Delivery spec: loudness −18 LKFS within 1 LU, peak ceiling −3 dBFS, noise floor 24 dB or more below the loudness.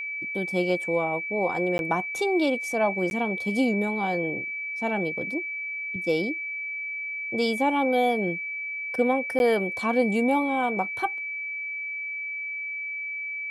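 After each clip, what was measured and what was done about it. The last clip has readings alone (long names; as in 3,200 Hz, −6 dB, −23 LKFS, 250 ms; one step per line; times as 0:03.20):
number of dropouts 3; longest dropout 11 ms; interfering tone 2,300 Hz; level of the tone −30 dBFS; integrated loudness −26.5 LKFS; sample peak −11.5 dBFS; target loudness −18.0 LKFS
→ repair the gap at 0:01.78/0:03.10/0:09.39, 11 ms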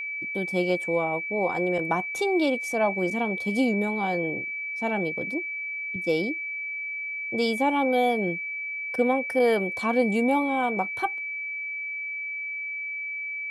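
number of dropouts 0; interfering tone 2,300 Hz; level of the tone −30 dBFS
→ notch filter 2,300 Hz, Q 30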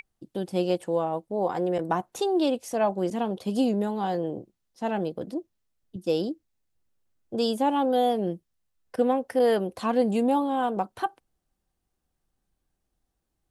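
interfering tone none found; integrated loudness −27.0 LKFS; sample peak −11.0 dBFS; target loudness −18.0 LKFS
→ level +9 dB
brickwall limiter −3 dBFS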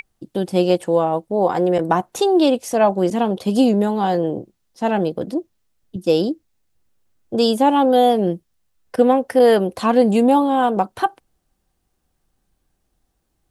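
integrated loudness −18.0 LKFS; sample peak −3.0 dBFS; background noise floor −71 dBFS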